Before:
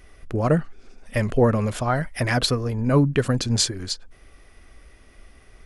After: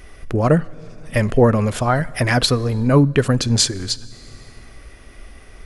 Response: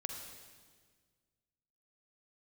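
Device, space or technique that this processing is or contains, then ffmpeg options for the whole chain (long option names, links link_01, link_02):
ducked reverb: -filter_complex "[0:a]asplit=3[link_01][link_02][link_03];[1:a]atrim=start_sample=2205[link_04];[link_02][link_04]afir=irnorm=-1:irlink=0[link_05];[link_03]apad=whole_len=249376[link_06];[link_05][link_06]sidechaincompress=threshold=-34dB:ratio=6:attack=16:release=567,volume=-2.5dB[link_07];[link_01][link_07]amix=inputs=2:normalize=0,volume=4dB"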